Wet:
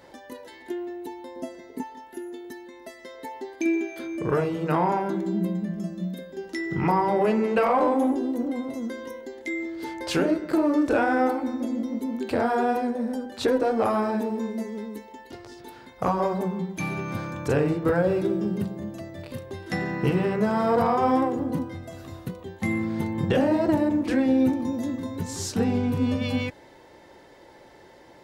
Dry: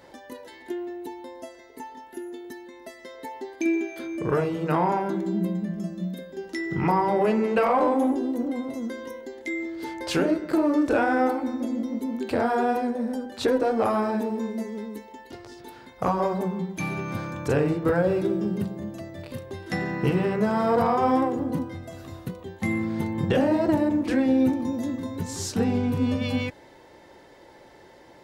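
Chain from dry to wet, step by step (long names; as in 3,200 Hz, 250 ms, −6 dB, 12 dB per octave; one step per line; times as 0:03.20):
0:01.36–0:01.83: parametric band 200 Hz +14 dB 1.7 octaves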